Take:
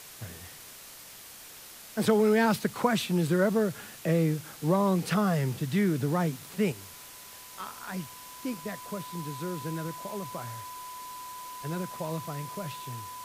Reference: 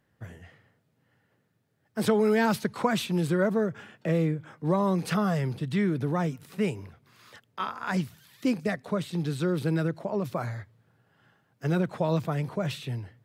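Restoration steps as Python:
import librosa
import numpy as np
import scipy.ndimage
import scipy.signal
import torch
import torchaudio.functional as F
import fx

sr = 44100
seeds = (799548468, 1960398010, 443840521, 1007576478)

y = fx.notch(x, sr, hz=1000.0, q=30.0)
y = fx.noise_reduce(y, sr, print_start_s=0.76, print_end_s=1.26, reduce_db=22.0)
y = fx.gain(y, sr, db=fx.steps((0.0, 0.0), (6.72, 8.5)))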